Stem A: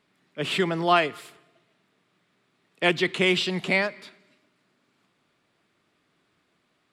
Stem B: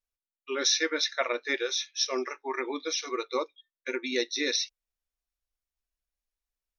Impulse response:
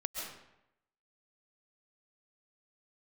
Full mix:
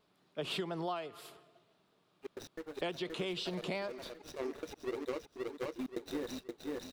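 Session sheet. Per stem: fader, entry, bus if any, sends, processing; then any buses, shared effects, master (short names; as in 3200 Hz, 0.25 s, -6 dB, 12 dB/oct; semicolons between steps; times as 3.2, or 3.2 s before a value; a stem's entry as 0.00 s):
+1.0 dB, 0.00 s, no send, no echo send, graphic EQ 125/250/2000/8000 Hz -4/-6/-12/-7 dB; vibrato 5.9 Hz 49 cents
+1.0 dB, 1.75 s, no send, echo send -5.5 dB, median filter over 41 samples; step gate "xx..x.x.xxx" 146 bpm -60 dB; auto duck -13 dB, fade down 0.65 s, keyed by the first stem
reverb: off
echo: feedback echo 0.524 s, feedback 31%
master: compressor 16:1, threshold -34 dBFS, peak gain reduction 18.5 dB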